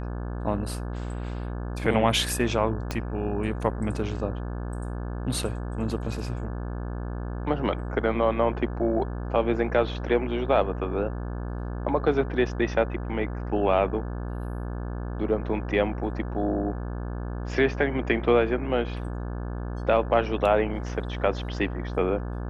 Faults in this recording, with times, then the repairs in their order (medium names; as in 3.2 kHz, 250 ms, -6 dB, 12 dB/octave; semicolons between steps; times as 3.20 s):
buzz 60 Hz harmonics 29 -32 dBFS
2.91 s: pop -14 dBFS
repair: de-click; de-hum 60 Hz, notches 29